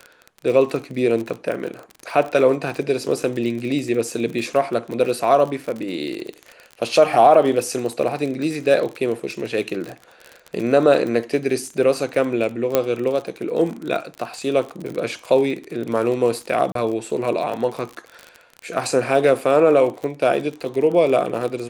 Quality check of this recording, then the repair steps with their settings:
surface crackle 39 per second −26 dBFS
0:12.75: click −3 dBFS
0:16.72–0:16.75: drop-out 33 ms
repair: click removal
repair the gap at 0:16.72, 33 ms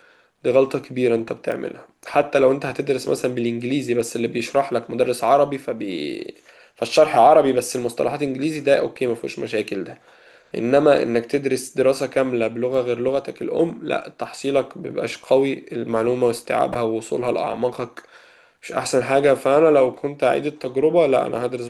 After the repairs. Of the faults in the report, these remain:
0:12.75: click

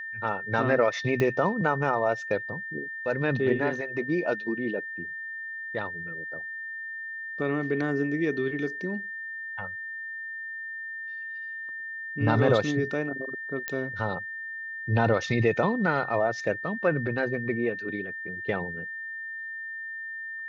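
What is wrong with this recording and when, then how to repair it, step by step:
whistle 1,800 Hz −34 dBFS
0:01.20: click −14 dBFS
0:13.68: click −14 dBFS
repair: click removal
notch filter 1,800 Hz, Q 30

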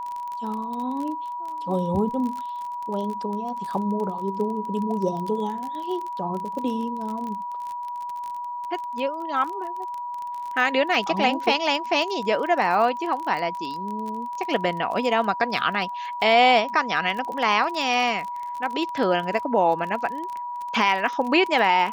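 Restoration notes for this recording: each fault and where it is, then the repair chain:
surface crackle 29 per second −29 dBFS
whistle 970 Hz −29 dBFS
0:07.27: click −23 dBFS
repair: click removal
notch filter 970 Hz, Q 30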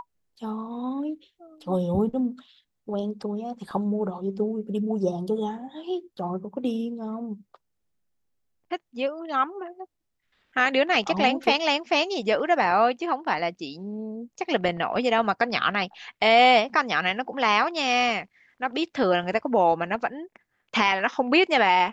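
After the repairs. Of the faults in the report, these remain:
none of them is left

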